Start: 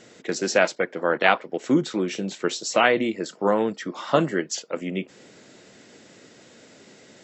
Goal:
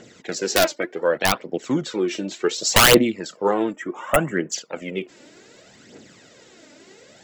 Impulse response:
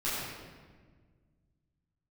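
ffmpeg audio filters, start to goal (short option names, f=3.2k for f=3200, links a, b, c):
-filter_complex "[0:a]asettb=1/sr,asplit=3[a][b][c];[a]atrim=end=0.804[d];[b]atrim=start=0.8:end=1.69,asetpts=PTS-STARTPTS,afade=t=in:d=0.004:c=qsin,afade=t=out:st=0.886:d=0.004:c=qsin,equalizer=f=1.4k:t=o:w=1.5:g=-3.5[e];[c]atrim=start=1.686[f];[d][e]acrossfade=d=0.004:c1=hsin:c2=qsin[g];[g][f]acrossfade=d=0.004:c1=qsin:c2=hsin,asettb=1/sr,asplit=3[h][i][j];[h]atrim=end=2.584[k];[i]atrim=start=2.58:end=2.98,asetpts=PTS-STARTPTS,afade=t=in:d=0.004:c=qsin,afade=t=out:st=0.396:d=0.004:c=qsin,acontrast=58[l];[j]atrim=start=2.976[m];[k][l]acrossfade=d=0.004:c1=hsin:c2=qsin[n];[n][m]acrossfade=d=0.004:c1=qsin:c2=hsin,aeval=exprs='(mod(2.24*val(0)+1,2)-1)/2.24':c=same,asettb=1/sr,asplit=3[o][p][q];[o]atrim=end=3.724[r];[p]atrim=start=3.72:end=4.52,asetpts=PTS-STARTPTS,afade=t=in:d=0.004:c=qsin,afade=t=out:st=0.796:d=0.004:c=qsin,asuperstop=centerf=4400:order=4:qfactor=1[s];[q]atrim=start=4.516[t];[r][s]acrossfade=d=0.004:c1=hsin:c2=qsin[u];[u][t]acrossfade=d=0.004:c1=qsin:c2=hsin,aphaser=in_gain=1:out_gain=1:delay=3.5:decay=0.57:speed=0.67:type=triangular"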